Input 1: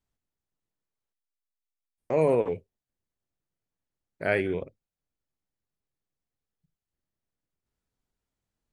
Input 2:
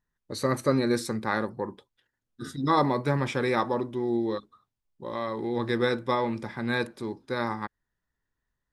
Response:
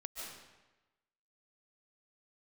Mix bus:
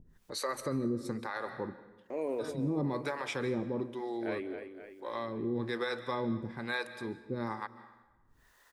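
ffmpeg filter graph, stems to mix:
-filter_complex "[0:a]lowshelf=frequency=210:width_type=q:width=3:gain=-8.5,volume=-15dB,asplit=3[link_01][link_02][link_03];[link_02]volume=-17dB[link_04];[link_03]volume=-8.5dB[link_05];[1:a]acompressor=mode=upward:threshold=-37dB:ratio=2.5,acrossover=split=440[link_06][link_07];[link_06]aeval=exprs='val(0)*(1-1/2+1/2*cos(2*PI*1.1*n/s))':channel_layout=same[link_08];[link_07]aeval=exprs='val(0)*(1-1/2-1/2*cos(2*PI*1.1*n/s))':channel_layout=same[link_09];[link_08][link_09]amix=inputs=2:normalize=0,volume=-1.5dB,asplit=2[link_10][link_11];[link_11]volume=-11dB[link_12];[2:a]atrim=start_sample=2205[link_13];[link_04][link_12]amix=inputs=2:normalize=0[link_14];[link_14][link_13]afir=irnorm=-1:irlink=0[link_15];[link_05]aecho=0:1:260|520|780|1040|1300|1560|1820|2080|2340:1|0.58|0.336|0.195|0.113|0.0656|0.0381|0.0221|0.0128[link_16];[link_01][link_10][link_15][link_16]amix=inputs=4:normalize=0,alimiter=limit=-24dB:level=0:latency=1:release=94"

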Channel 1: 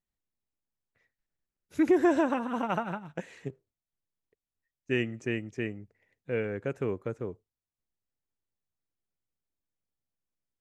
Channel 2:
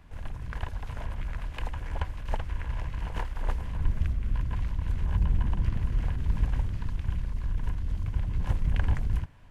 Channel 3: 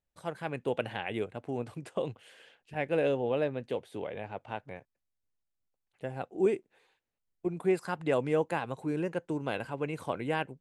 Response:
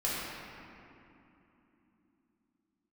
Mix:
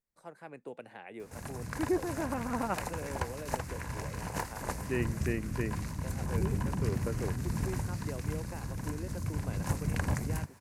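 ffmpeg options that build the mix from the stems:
-filter_complex "[0:a]volume=-2dB[link_01];[1:a]highpass=160,bass=frequency=250:gain=5,treble=frequency=4000:gain=15,adelay=1200,volume=2dB[link_02];[2:a]highpass=210,acrossover=split=270|3000[link_03][link_04][link_05];[link_04]acompressor=threshold=-34dB:ratio=6[link_06];[link_03][link_06][link_05]amix=inputs=3:normalize=0,volume=-8dB,asplit=2[link_07][link_08];[link_08]apad=whole_len=467675[link_09];[link_01][link_09]sidechaincompress=threshold=-53dB:ratio=8:attack=16:release=456[link_10];[link_10][link_02][link_07]amix=inputs=3:normalize=0,equalizer=frequency=3200:width=2.9:gain=-12.5"

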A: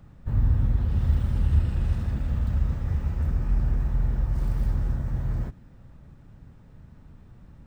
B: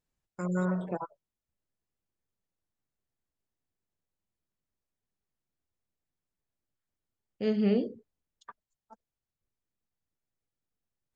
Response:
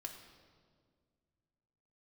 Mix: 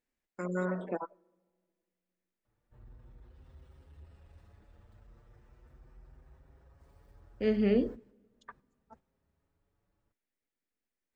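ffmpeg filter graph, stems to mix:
-filter_complex "[0:a]asoftclip=type=tanh:threshold=-17.5dB,lowshelf=frequency=290:width_type=q:width=1.5:gain=-8.5,asplit=2[link_01][link_02];[link_02]adelay=6.4,afreqshift=0.38[link_03];[link_01][link_03]amix=inputs=2:normalize=1,adelay=2450,volume=-9.5dB[link_04];[1:a]equalizer=frequency=125:width_type=o:width=1:gain=-11,equalizer=frequency=250:width_type=o:width=1:gain=9,equalizer=frequency=500:width_type=o:width=1:gain=5,equalizer=frequency=2000:width_type=o:width=1:gain=10,volume=-6dB,asplit=3[link_05][link_06][link_07];[link_06]volume=-22.5dB[link_08];[link_07]apad=whole_len=446501[link_09];[link_04][link_09]sidechaingate=range=-10dB:threshold=-59dB:ratio=16:detection=peak[link_10];[2:a]atrim=start_sample=2205[link_11];[link_08][link_11]afir=irnorm=-1:irlink=0[link_12];[link_10][link_05][link_12]amix=inputs=3:normalize=0"

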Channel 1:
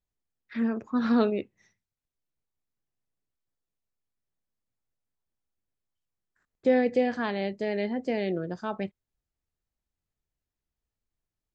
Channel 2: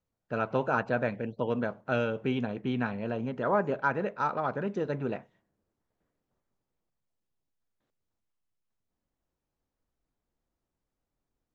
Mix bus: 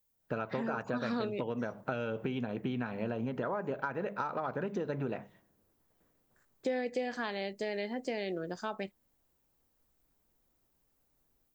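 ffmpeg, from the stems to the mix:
ffmpeg -i stem1.wav -i stem2.wav -filter_complex "[0:a]aemphasis=mode=production:type=bsi,volume=0dB[link_01];[1:a]acompressor=threshold=-32dB:ratio=6,bandreject=frequency=50:width_type=h:width=6,bandreject=frequency=100:width_type=h:width=6,bandreject=frequency=150:width_type=h:width=6,bandreject=frequency=200:width_type=h:width=6,dynaudnorm=framelen=140:gausssize=3:maxgain=12dB,volume=-5.5dB[link_02];[link_01][link_02]amix=inputs=2:normalize=0,acompressor=threshold=-33dB:ratio=3" out.wav

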